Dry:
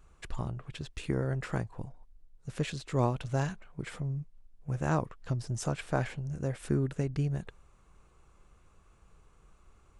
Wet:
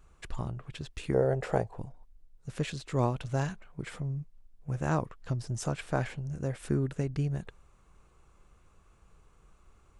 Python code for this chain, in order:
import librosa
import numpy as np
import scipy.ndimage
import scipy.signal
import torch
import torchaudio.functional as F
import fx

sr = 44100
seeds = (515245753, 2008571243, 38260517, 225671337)

y = fx.band_shelf(x, sr, hz=580.0, db=11.0, octaves=1.3, at=(1.14, 1.76))